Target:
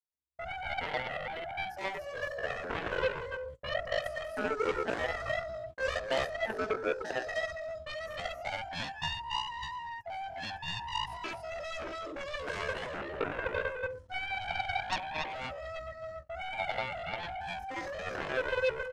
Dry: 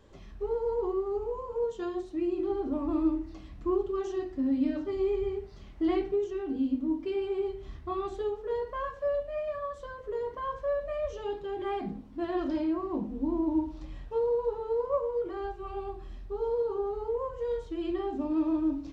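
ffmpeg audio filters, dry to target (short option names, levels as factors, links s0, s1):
-filter_complex "[0:a]agate=range=0.00178:threshold=0.0141:ratio=16:detection=peak,asplit=2[s0][s1];[s1]aecho=0:1:218.7|279.9:0.398|0.708[s2];[s0][s2]amix=inputs=2:normalize=0,asetrate=72056,aresample=44100,atempo=0.612027,aeval=exprs='0.168*(cos(1*acos(clip(val(0)/0.168,-1,1)))-cos(1*PI/2))+0.0668*(cos(7*acos(clip(val(0)/0.168,-1,1)))-cos(7*PI/2))':c=same,volume=0.447"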